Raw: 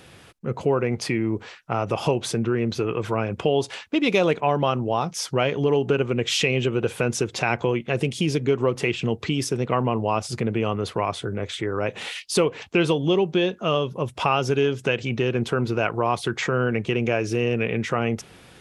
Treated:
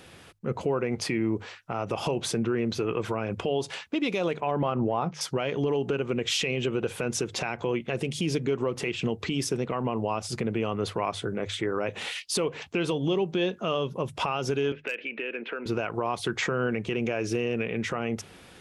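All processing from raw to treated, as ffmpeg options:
-filter_complex "[0:a]asettb=1/sr,asplit=3[a][b][c];[a]atrim=end=4.514[d];[b]atrim=start=4.51:end=5.21,asetpts=PTS-STARTPTS,afade=t=in:d=0.004:c=qsin,afade=t=out:st=0.696:d=0.004:c=qsin,lowpass=2.2k,acontrast=25[e];[c]atrim=start=5.206[f];[d][e]acrossfade=d=0.004:c1=hsin:c2=qsin[g];[g][f]acrossfade=d=0.004:c1=qsin:c2=hsin,asettb=1/sr,asplit=3[h][i][j];[h]atrim=end=14.724[k];[i]atrim=start=14.72:end=15.66,asetpts=PTS-STARTPTS,afade=t=in:d=0.004:c=qsin,afade=t=out:st=0.936:d=0.004:c=qsin,highpass=f=310:w=0.5412,highpass=f=310:w=1.3066,equalizer=f=370:t=q:w=4:g=-6,equalizer=f=750:t=q:w=4:g=-9,equalizer=f=1.1k:t=q:w=4:g=-7,equalizer=f=1.7k:t=q:w=4:g=5,equalizer=f=2.5k:t=q:w=4:g=9,lowpass=f=2.7k:w=0.5412,lowpass=f=2.7k:w=1.3066,volume=13dB,asoftclip=hard,volume=-13dB,acompressor=threshold=-29dB:ratio=3:attack=3.2:release=140:knee=1:detection=peak[l];[j]atrim=start=15.656[m];[k][l]acrossfade=d=0.004:c1=hsin:c2=qsin[n];[n][m]acrossfade=d=0.004:c1=qsin:c2=hsin,equalizer=f=120:w=7.1:g=-5,bandreject=f=50:t=h:w=6,bandreject=f=100:t=h:w=6,bandreject=f=150:t=h:w=6,alimiter=limit=-16dB:level=0:latency=1:release=101,volume=-1.5dB"

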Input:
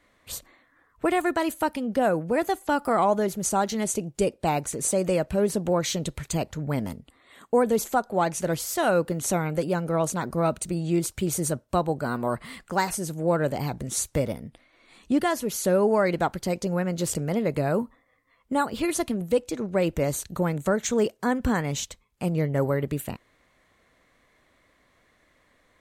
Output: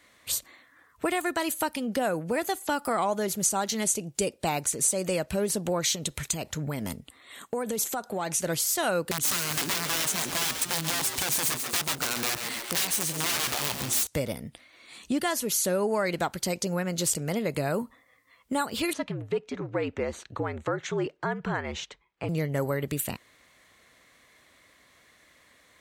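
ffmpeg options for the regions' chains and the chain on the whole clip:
-filter_complex "[0:a]asettb=1/sr,asplit=3[a][b][c];[a]atrim=end=5.954[d];[b]atrim=start=5.95:end=8.39,asetpts=PTS-STARTPTS,afade=t=in:d=0.004:c=qsin,afade=t=out:st=2.436:d=0.004:c=qsin,bandreject=f=4.6k:w=19,acompressor=threshold=-26dB:ratio=6:attack=3.2:release=140:knee=1:detection=peak[e];[c]atrim=start=8.386[f];[d][e]acrossfade=d=0.004:c1=hsin:c2=qsin[g];[g][f]acrossfade=d=0.004:c1=qsin:c2=hsin,asettb=1/sr,asplit=3[h][i][j];[h]atrim=end=9.114[k];[i]atrim=start=9.11:end=14.07,asetpts=PTS-STARTPTS,afade=t=in:d=0.004:c=qsin,afade=t=out:st=4.956:d=0.004:c=qsin,aeval=exprs='(mod(14.1*val(0)+1,2)-1)/14.1':c=same,asplit=7[l][m][n][o][p][q][r];[m]adelay=137,afreqshift=110,volume=-9dB[s];[n]adelay=274,afreqshift=220,volume=-14.2dB[t];[o]adelay=411,afreqshift=330,volume=-19.4dB[u];[p]adelay=548,afreqshift=440,volume=-24.6dB[v];[q]adelay=685,afreqshift=550,volume=-29.8dB[w];[r]adelay=822,afreqshift=660,volume=-35dB[x];[l][s][t][u][v][w][x]amix=inputs=7:normalize=0,atrim=end_sample=218736[y];[j]atrim=start=14.066[z];[k][y]acrossfade=d=0.004:c1=hsin:c2=qsin[aa];[aa][z]acrossfade=d=0.004:c1=qsin:c2=hsin,asettb=1/sr,asplit=3[ab][ac][ad];[ab]atrim=end=18.934[ae];[ac]atrim=start=18.93:end=22.29,asetpts=PTS-STARTPTS,afade=t=in:d=0.004:c=qsin,afade=t=out:st=3.356:d=0.004:c=qsin,lowpass=2.1k,equalizer=f=67:t=o:w=2.8:g=-14,afreqshift=-63[af];[ad]atrim=start=22.286[ag];[ae][af]acrossfade=d=0.004:c1=hsin:c2=qsin[ah];[ah][ag]acrossfade=d=0.004:c1=qsin:c2=hsin,highpass=55,highshelf=f=2k:g=11,acompressor=threshold=-28dB:ratio=2"

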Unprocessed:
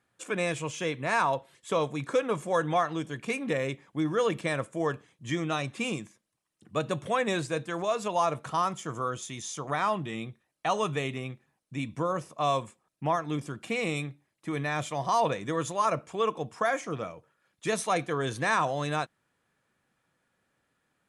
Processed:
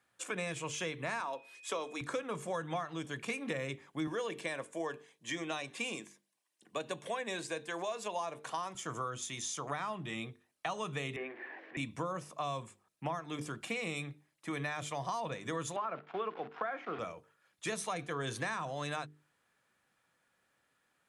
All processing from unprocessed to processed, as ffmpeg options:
-filter_complex "[0:a]asettb=1/sr,asplit=3[a][b][c];[a]atrim=end=1.204[d];[b]atrim=start=1.2:end=2.01,asetpts=PTS-STARTPTS,afade=t=in:d=0.004:c=qsin,afade=t=out:st=0.806:d=0.004:c=qsin,highpass=f=260:w=0.5412,highpass=f=260:w=1.3066,equalizer=f=5.3k:w=3.9:g=4.5,aeval=exprs='val(0)+0.002*sin(2*PI*2500*n/s)':c=same[e];[c]atrim=start=2.006[f];[d][e]acrossfade=d=0.004:c1=hsin:c2=qsin[g];[g][f]acrossfade=d=0.004:c1=qsin:c2=hsin,asettb=1/sr,asplit=3[h][i][j];[h]atrim=end=4.074[k];[i]atrim=start=4.07:end=8.75,asetpts=PTS-STARTPTS,afade=t=in:d=0.004:c=qsin,afade=t=out:st=4.676:d=0.004:c=qsin,highpass=260,bandreject=f=1.3k:w=5.6[l];[j]atrim=start=8.746[m];[k][l]acrossfade=d=0.004:c1=hsin:c2=qsin[n];[n][m]acrossfade=d=0.004:c1=qsin:c2=hsin,asettb=1/sr,asplit=3[o][p][q];[o]atrim=end=11.164[r];[p]atrim=start=11.16:end=11.77,asetpts=PTS-STARTPTS,afade=t=in:d=0.004:c=qsin,afade=t=out:st=0.606:d=0.004:c=qsin,aeval=exprs='val(0)+0.5*0.00944*sgn(val(0))':c=same,highpass=f=310:w=0.5412,highpass=f=310:w=1.3066,equalizer=f=340:t=q:w=4:g=9,equalizer=f=880:t=q:w=4:g=-3,equalizer=f=1.3k:t=q:w=4:g=-9,equalizer=f=1.8k:t=q:w=4:g=9,lowpass=f=2.2k:w=0.5412,lowpass=f=2.2k:w=1.3066[s];[q]atrim=start=11.766[t];[r][s]acrossfade=d=0.004:c1=hsin:c2=qsin[u];[u][t]acrossfade=d=0.004:c1=qsin:c2=hsin,asettb=1/sr,asplit=3[v][w][x];[v]atrim=end=15.764[y];[w]atrim=start=15.76:end=16.99,asetpts=PTS-STARTPTS,afade=t=in:d=0.004:c=qsin,afade=t=out:st=1.226:d=0.004:c=qsin,acrusher=bits=8:dc=4:mix=0:aa=0.000001,highpass=f=180:w=0.5412,highpass=f=180:w=1.3066,equalizer=f=390:t=q:w=4:g=5,equalizer=f=760:t=q:w=4:g=7,equalizer=f=1.4k:t=q:w=4:g=7,lowpass=f=3.1k:w=0.5412,lowpass=f=3.1k:w=1.3066,acompressor=threshold=-26dB:ratio=1.5:attack=3.2:release=140:knee=1:detection=peak[z];[x]atrim=start=16.986[aa];[y][z]acrossfade=d=0.004:c1=hsin:c2=qsin[ab];[ab][aa]acrossfade=d=0.004:c1=qsin:c2=hsin,lowshelf=f=480:g=-7.5,bandreject=f=50:t=h:w=6,bandreject=f=100:t=h:w=6,bandreject=f=150:t=h:w=6,bandreject=f=200:t=h:w=6,bandreject=f=250:t=h:w=6,bandreject=f=300:t=h:w=6,bandreject=f=350:t=h:w=6,bandreject=f=400:t=h:w=6,bandreject=f=450:t=h:w=6,acrossover=split=220[ac][ad];[ad]acompressor=threshold=-36dB:ratio=6[ae];[ac][ae]amix=inputs=2:normalize=0,volume=1dB"

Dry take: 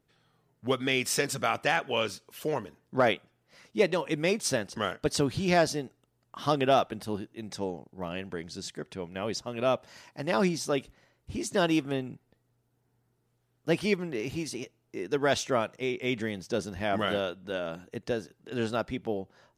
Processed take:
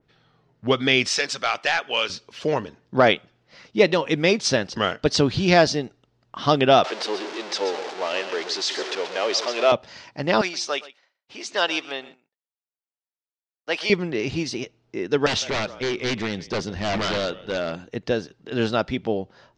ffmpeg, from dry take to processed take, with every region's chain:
-filter_complex "[0:a]asettb=1/sr,asplit=3[a][b][c];[a]atrim=end=1.084[d];[b]atrim=start=1.08:end=2.1,asetpts=PTS-STARTPTS,afade=t=in:d=0.004:c=qsin,afade=t=out:st=1.016:d=0.004:c=qsin,highpass=f=960:p=1,asoftclip=type=hard:threshold=-21.5dB[e];[c]atrim=start=2.096[f];[d][e]acrossfade=d=0.004:c1=hsin:c2=qsin[g];[g][f]acrossfade=d=0.004:c1=qsin:c2=hsin,asettb=1/sr,asplit=3[h][i][j];[h]atrim=end=6.844[k];[i]atrim=start=6.84:end=9.72,asetpts=PTS-STARTPTS,afade=t=in:d=0.004:c=qsin,afade=t=out:st=2.876:d=0.004:c=qsin,aeval=exprs='val(0)+0.5*0.0237*sgn(val(0))':c=same,highpass=f=380:w=0.5412,highpass=f=380:w=1.3066,aecho=1:1:132:0.299,atrim=end_sample=127008[l];[j]atrim=start=9.716[m];[k][l]acrossfade=d=0.004:c1=hsin:c2=qsin[n];[n][m]acrossfade=d=0.004:c1=qsin:c2=hsin,asettb=1/sr,asplit=3[o][p][q];[o]atrim=end=10.414[r];[p]atrim=start=10.41:end=13.9,asetpts=PTS-STARTPTS,afade=t=in:d=0.004:c=qsin,afade=t=out:st=3.486:d=0.004:c=qsin,highpass=740,agate=range=-33dB:threshold=-60dB:ratio=3:release=100:detection=peak,aecho=1:1:121:0.126,atrim=end_sample=153909[s];[q]atrim=start=13.896[t];[r][s]acrossfade=d=0.004:c1=hsin:c2=qsin[u];[u][t]acrossfade=d=0.004:c1=qsin:c2=hsin,asettb=1/sr,asplit=3[v][w][x];[v]atrim=end=15.264[y];[w]atrim=start=15.26:end=17.76,asetpts=PTS-STARTPTS,afade=t=in:d=0.004:c=qsin,afade=t=out:st=2.496:d=0.004:c=qsin,agate=range=-33dB:threshold=-43dB:ratio=3:release=100:detection=peak,asplit=5[z][aa][ab][ac][ad];[aa]adelay=156,afreqshift=-35,volume=-22dB[ae];[ab]adelay=312,afreqshift=-70,volume=-27.4dB[af];[ac]adelay=468,afreqshift=-105,volume=-32.7dB[ag];[ad]adelay=624,afreqshift=-140,volume=-38.1dB[ah];[z][ae][af][ag][ah]amix=inputs=5:normalize=0,atrim=end_sample=110250,aeval=exprs='0.0447*(abs(mod(val(0)/0.0447+3,4)-2)-1)':c=same[ai];[x]atrim=start=17.756[aj];[y][ai]acrossfade=d=0.004:c1=hsin:c2=qsin[ak];[ak][aj]acrossfade=d=0.004:c1=qsin:c2=hsin,lowpass=f=5.4k:w=0.5412,lowpass=f=5.4k:w=1.3066,adynamicequalizer=threshold=0.00631:dfrequency=2900:dqfactor=0.7:tfrequency=2900:tqfactor=0.7:attack=5:release=100:ratio=0.375:range=2.5:mode=boostabove:tftype=highshelf,volume=7.5dB"

